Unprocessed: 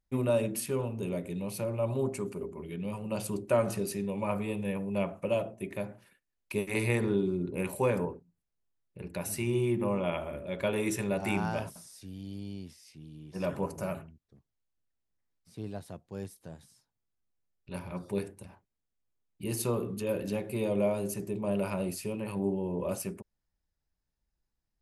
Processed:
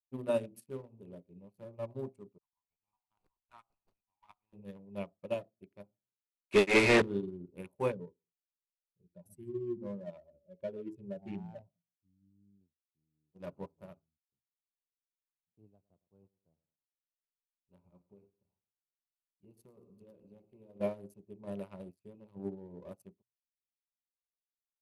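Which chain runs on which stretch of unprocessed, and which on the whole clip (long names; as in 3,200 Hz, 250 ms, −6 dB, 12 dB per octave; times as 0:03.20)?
0:02.38–0:04.53: Butterworth high-pass 770 Hz 72 dB per octave + windowed peak hold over 5 samples
0:06.52–0:07.02: variable-slope delta modulation 64 kbit/s + mid-hump overdrive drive 26 dB, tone 6,900 Hz, clips at −14.5 dBFS + high-frequency loss of the air 76 metres
0:07.92–0:12.61: expanding power law on the bin magnitudes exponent 1.9 + single-tap delay 125 ms −19.5 dB
0:15.70–0:20.81: downward compressor, threshold −33 dBFS + feedback echo at a low word length 108 ms, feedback 55%, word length 9 bits, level −9 dB
whole clip: adaptive Wiener filter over 25 samples; mains-hum notches 60/120 Hz; expander for the loud parts 2.5 to 1, over −47 dBFS; level +2 dB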